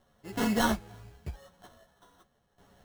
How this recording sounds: a buzz of ramps at a fixed pitch in blocks of 8 samples; random-step tremolo 3.1 Hz, depth 80%; aliases and images of a low sample rate 2.4 kHz, jitter 0%; a shimmering, thickened sound

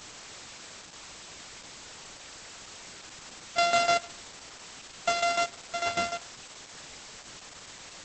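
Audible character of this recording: a buzz of ramps at a fixed pitch in blocks of 64 samples; tremolo saw down 6.7 Hz, depth 75%; a quantiser's noise floor 8-bit, dither triangular; Opus

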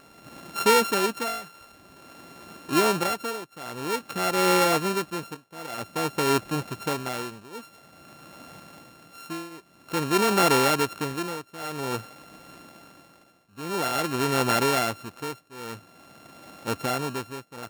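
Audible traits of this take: a buzz of ramps at a fixed pitch in blocks of 32 samples; tremolo triangle 0.5 Hz, depth 95%

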